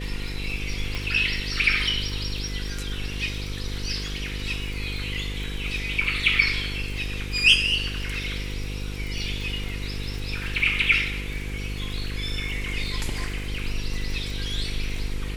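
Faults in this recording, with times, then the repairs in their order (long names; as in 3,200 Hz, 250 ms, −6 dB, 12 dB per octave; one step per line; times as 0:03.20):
mains buzz 50 Hz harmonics 10 −32 dBFS
surface crackle 46 per second −33 dBFS
0:00.95: click −17 dBFS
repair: click removal
hum removal 50 Hz, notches 10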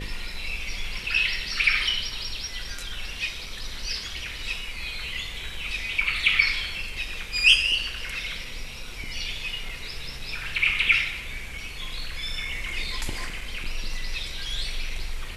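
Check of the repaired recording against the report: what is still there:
none of them is left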